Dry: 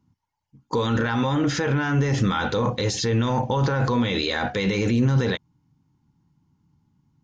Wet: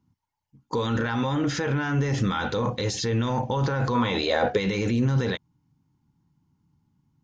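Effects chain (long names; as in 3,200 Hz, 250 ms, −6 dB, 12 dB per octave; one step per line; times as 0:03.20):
0:03.94–0:04.56: parametric band 1,300 Hz → 410 Hz +15 dB 0.75 octaves
level −3 dB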